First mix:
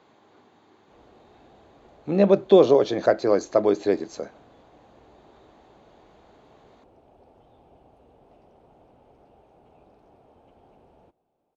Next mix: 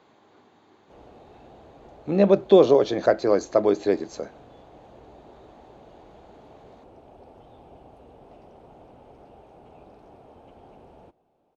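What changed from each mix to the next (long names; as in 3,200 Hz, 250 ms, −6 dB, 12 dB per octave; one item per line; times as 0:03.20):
background +6.5 dB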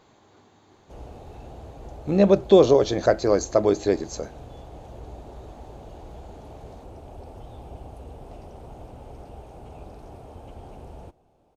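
background +4.5 dB
master: remove three-way crossover with the lows and the highs turned down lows −13 dB, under 150 Hz, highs −12 dB, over 4,400 Hz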